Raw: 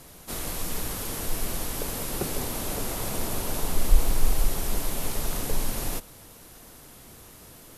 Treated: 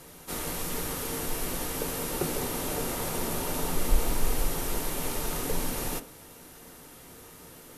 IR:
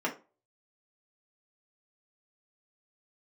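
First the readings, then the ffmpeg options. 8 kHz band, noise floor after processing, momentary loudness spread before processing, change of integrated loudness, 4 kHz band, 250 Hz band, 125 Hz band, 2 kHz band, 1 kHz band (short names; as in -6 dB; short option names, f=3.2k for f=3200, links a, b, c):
-1.0 dB, -50 dBFS, 19 LU, -1.0 dB, -1.0 dB, +1.0 dB, -3.0 dB, +0.5 dB, +1.0 dB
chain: -filter_complex "[0:a]asplit=2[a][b];[1:a]atrim=start_sample=2205,lowshelf=f=94:g=10.5[c];[b][c]afir=irnorm=-1:irlink=0,volume=-10.5dB[d];[a][d]amix=inputs=2:normalize=0,volume=-2.5dB"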